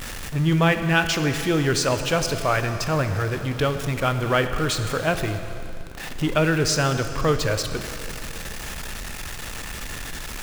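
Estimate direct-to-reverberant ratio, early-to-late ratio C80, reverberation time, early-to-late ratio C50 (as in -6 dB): 7.5 dB, 9.0 dB, 2.8 s, 8.5 dB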